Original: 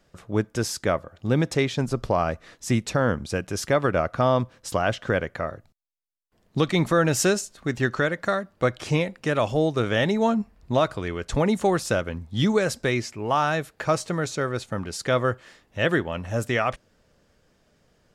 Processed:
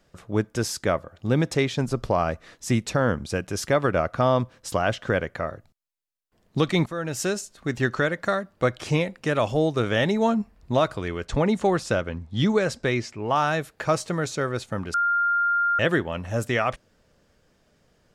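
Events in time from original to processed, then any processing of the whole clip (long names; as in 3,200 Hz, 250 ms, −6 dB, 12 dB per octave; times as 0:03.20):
0:06.86–0:07.78: fade in, from −14 dB
0:11.26–0:13.36: high-frequency loss of the air 51 metres
0:14.94–0:15.79: beep over 1,400 Hz −19 dBFS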